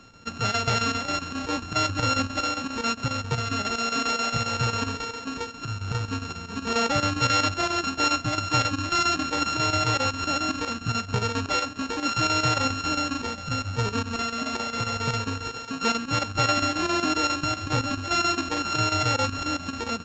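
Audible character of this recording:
a buzz of ramps at a fixed pitch in blocks of 32 samples
chopped level 7.4 Hz, depth 60%, duty 80%
A-law companding

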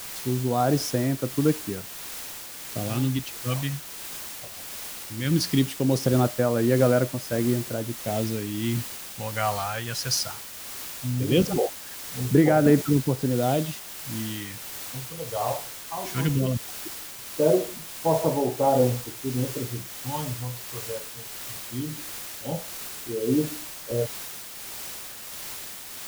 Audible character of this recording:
phaser sweep stages 2, 0.18 Hz, lowest notch 300–3,600 Hz
a quantiser's noise floor 6 bits, dither triangular
tremolo triangle 1.5 Hz, depth 40%

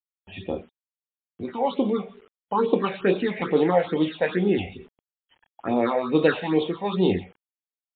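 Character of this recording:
phaser sweep stages 6, 2.3 Hz, lowest notch 320–1,700 Hz
a quantiser's noise floor 10 bits, dither none
MP3

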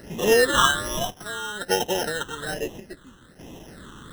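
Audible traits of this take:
a quantiser's noise floor 8 bits, dither triangular
chopped level 0.59 Hz, depth 65%, duty 65%
aliases and images of a low sample rate 2,300 Hz, jitter 0%
phaser sweep stages 8, 1.2 Hz, lowest notch 660–1,400 Hz

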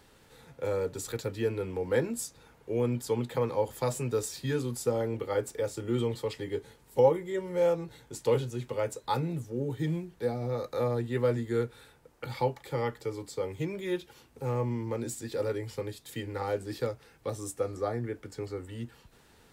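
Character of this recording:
background noise floor −61 dBFS
spectral slope −6.5 dB per octave

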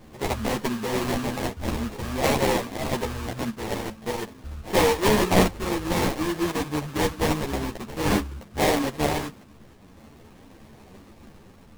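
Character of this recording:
a buzz of ramps at a fixed pitch in blocks of 16 samples
phaser sweep stages 6, 0.49 Hz, lowest notch 770–3,000 Hz
aliases and images of a low sample rate 1,400 Hz, jitter 20%
a shimmering, thickened sound

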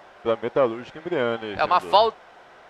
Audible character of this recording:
background noise floor −49 dBFS
spectral slope −2.0 dB per octave

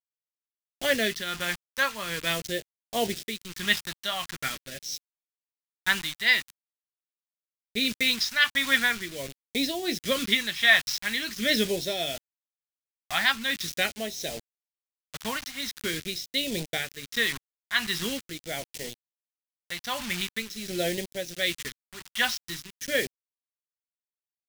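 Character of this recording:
a quantiser's noise floor 6 bits, dither none
tremolo triangle 1.4 Hz, depth 65%
phaser sweep stages 2, 0.44 Hz, lowest notch 430–1,200 Hz

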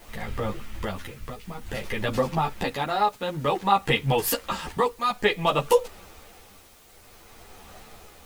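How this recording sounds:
tremolo triangle 0.55 Hz, depth 75%
a quantiser's noise floor 10 bits, dither triangular
a shimmering, thickened sound

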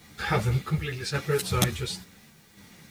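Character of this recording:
sample-and-hold tremolo
a quantiser's noise floor 10 bits, dither triangular
a shimmering, thickened sound

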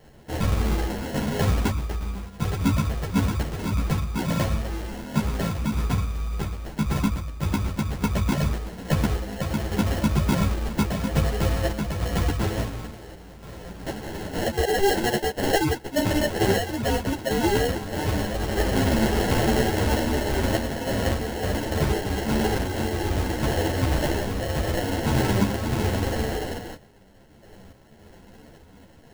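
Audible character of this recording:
aliases and images of a low sample rate 1,200 Hz, jitter 0%
sample-and-hold tremolo
a shimmering, thickened sound

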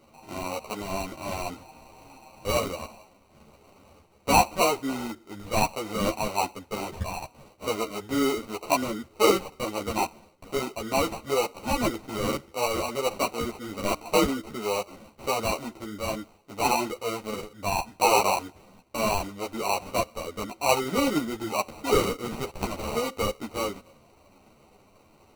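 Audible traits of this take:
aliases and images of a low sample rate 1,700 Hz, jitter 0%
a shimmering, thickened sound

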